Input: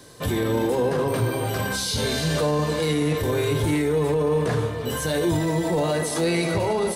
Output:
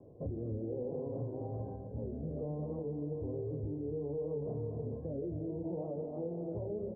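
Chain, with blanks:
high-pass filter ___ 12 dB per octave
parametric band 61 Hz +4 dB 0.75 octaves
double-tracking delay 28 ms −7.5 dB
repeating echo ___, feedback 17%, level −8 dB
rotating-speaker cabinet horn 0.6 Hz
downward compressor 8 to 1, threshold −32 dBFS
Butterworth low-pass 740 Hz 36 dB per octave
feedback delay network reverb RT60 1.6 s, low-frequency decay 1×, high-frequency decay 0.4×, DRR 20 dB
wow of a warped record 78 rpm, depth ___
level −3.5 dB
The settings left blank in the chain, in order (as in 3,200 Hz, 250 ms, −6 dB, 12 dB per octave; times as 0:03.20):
40 Hz, 250 ms, 100 cents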